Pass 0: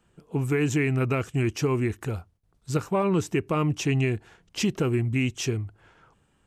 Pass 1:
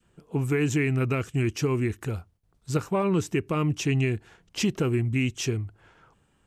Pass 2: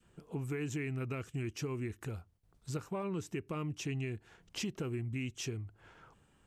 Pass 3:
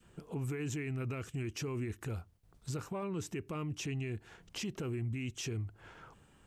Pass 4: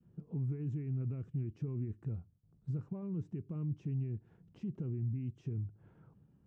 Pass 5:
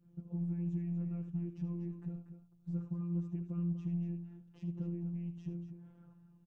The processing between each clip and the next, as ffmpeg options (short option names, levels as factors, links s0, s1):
-af "adynamicequalizer=threshold=0.00708:dfrequency=780:dqfactor=1.1:tfrequency=780:tqfactor=1.1:attack=5:release=100:ratio=0.375:range=2.5:mode=cutabove:tftype=bell"
-af "acompressor=threshold=0.00708:ratio=2,volume=0.841"
-af "alimiter=level_in=3.76:limit=0.0631:level=0:latency=1:release=24,volume=0.266,volume=1.68"
-af "bandpass=f=150:t=q:w=1.6:csg=0,volume=1.5"
-af "aeval=exprs='0.0376*(cos(1*acos(clip(val(0)/0.0376,-1,1)))-cos(1*PI/2))+0.00075*(cos(5*acos(clip(val(0)/0.0376,-1,1)))-cos(5*PI/2))':c=same,afftfilt=real='hypot(re,im)*cos(PI*b)':imag='0':win_size=1024:overlap=0.75,aecho=1:1:75.8|239.1:0.282|0.316,volume=1.19"